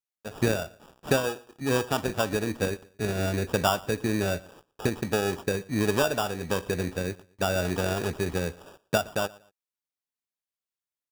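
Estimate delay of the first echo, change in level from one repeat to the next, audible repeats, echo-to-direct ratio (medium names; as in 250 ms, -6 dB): 117 ms, -11.0 dB, 2, -22.0 dB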